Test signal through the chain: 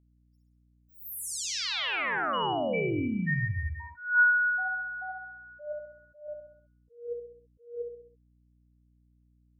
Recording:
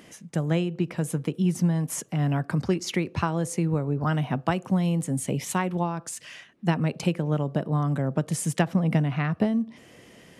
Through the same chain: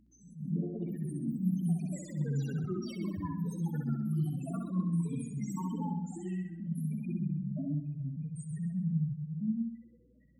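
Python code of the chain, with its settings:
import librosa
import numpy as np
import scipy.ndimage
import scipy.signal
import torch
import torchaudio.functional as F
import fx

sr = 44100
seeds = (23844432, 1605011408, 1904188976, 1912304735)

y = fx.block_float(x, sr, bits=3)
y = fx.spec_topn(y, sr, count=2)
y = fx.high_shelf(y, sr, hz=6000.0, db=-7.0)
y = fx.echo_pitch(y, sr, ms=115, semitones=4, count=3, db_per_echo=-6.0)
y = fx.high_shelf(y, sr, hz=2700.0, db=9.0)
y = fx.echo_feedback(y, sr, ms=65, feedback_pct=50, wet_db=-4)
y = fx.add_hum(y, sr, base_hz=60, snr_db=34)
y = fx.attack_slew(y, sr, db_per_s=140.0)
y = F.gain(torch.from_numpy(y), -7.5).numpy()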